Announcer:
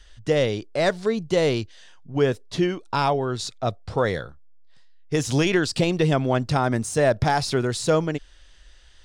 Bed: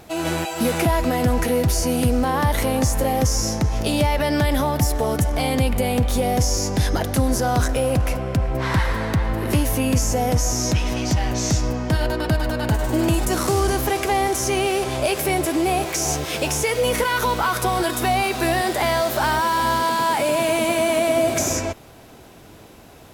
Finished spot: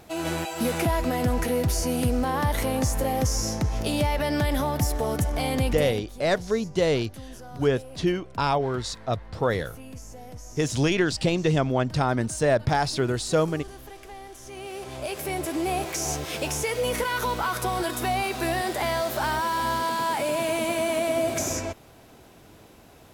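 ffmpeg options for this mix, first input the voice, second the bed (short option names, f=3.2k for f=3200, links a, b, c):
-filter_complex "[0:a]adelay=5450,volume=-2dB[a];[1:a]volume=11.5dB,afade=t=out:st=5.69:d=0.34:silence=0.133352,afade=t=in:st=14.43:d=1.33:silence=0.149624[b];[a][b]amix=inputs=2:normalize=0"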